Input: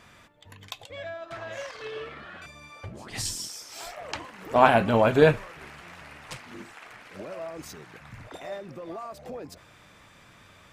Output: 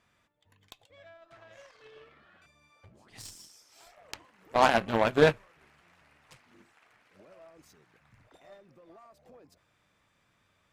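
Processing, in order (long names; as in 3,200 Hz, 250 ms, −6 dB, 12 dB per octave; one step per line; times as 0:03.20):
harmonic generator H 5 −17 dB, 7 −13 dB, 8 −31 dB, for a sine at −2 dBFS
soft clipping −10.5 dBFS, distortion −12 dB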